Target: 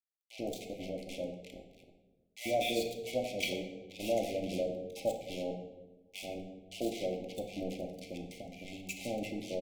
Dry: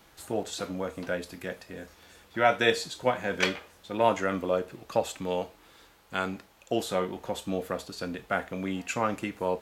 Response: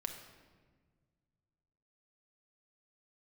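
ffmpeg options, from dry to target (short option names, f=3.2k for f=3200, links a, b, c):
-filter_complex "[0:a]asplit=3[a][b][c];[a]afade=t=out:st=1.22:d=0.02[d];[b]tremolo=f=150:d=0.919,afade=t=in:st=1.22:d=0.02,afade=t=out:st=1.72:d=0.02[e];[c]afade=t=in:st=1.72:d=0.02[f];[d][e][f]amix=inputs=3:normalize=0,asettb=1/sr,asplit=3[g][h][i];[g]atrim=end=6.164[j];[h]atrim=start=6.16:end=7.12,asetpts=PTS-STARTPTS,afade=t=in:d=0.004:c=qsin,afade=t=out:st=0.956:d=0.004:c=qsin,highpass=f=110:w=0.5412,highpass=f=110:w=1.3066[k];[i]atrim=start=7.116[l];[j][k]acrossfade=d=0.004:c1=hsin:c2=qsin[m];[m][l]acrossfade=d=0.004:c1=qsin:c2=hsin,acrusher=bits=4:mix=0:aa=0.5,asettb=1/sr,asplit=3[n][o][p];[n]atrim=end=8.194[q];[o]atrim=start=8.19:end=8.88,asetpts=PTS-STARTPTS,afade=t=in:d=0.004:c=qsin,afade=t=out:st=0.686:d=0.004:c=qsin,acrossover=split=210|910[r][s][t];[r]acompressor=threshold=-41dB:ratio=4[u];[s]acompressor=threshold=-43dB:ratio=4[v];[t]acompressor=threshold=-37dB:ratio=4[w];[u][v][w]amix=inputs=3:normalize=0[x];[p]atrim=start=8.876[y];[q][x]acrossfade=d=0.004:c1=hsin:c2=qsin[z];[z][y]acrossfade=d=0.004:c1=qsin:c2=hsin,asuperstop=centerf=1300:order=20:qfactor=0.98,acrossover=split=1200[aa][ab];[aa]adelay=90[ac];[ac][ab]amix=inputs=2:normalize=0[ad];[1:a]atrim=start_sample=2205,asetrate=66150,aresample=44100[ae];[ad][ae]afir=irnorm=-1:irlink=0,volume=-2dB"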